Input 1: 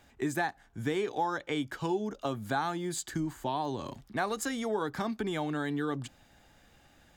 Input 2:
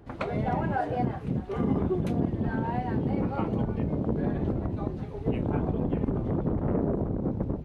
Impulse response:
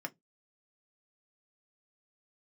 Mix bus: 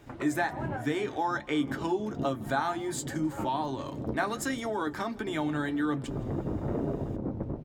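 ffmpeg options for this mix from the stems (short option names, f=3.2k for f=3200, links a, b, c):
-filter_complex "[0:a]volume=2dB,asplit=4[a][b][c][d];[b]volume=-3.5dB[e];[c]volume=-21dB[f];[1:a]volume=-0.5dB,asplit=2[g][h];[h]volume=-13dB[i];[d]apad=whole_len=337157[j];[g][j]sidechaincompress=threshold=-49dB:ratio=3:attack=36:release=105[k];[2:a]atrim=start_sample=2205[l];[e][i]amix=inputs=2:normalize=0[m];[m][l]afir=irnorm=-1:irlink=0[n];[f]aecho=0:1:164|328|492|656:1|0.3|0.09|0.027[o];[a][k][n][o]amix=inputs=4:normalize=0,flanger=delay=6.8:depth=3.8:regen=-55:speed=1.3:shape=triangular"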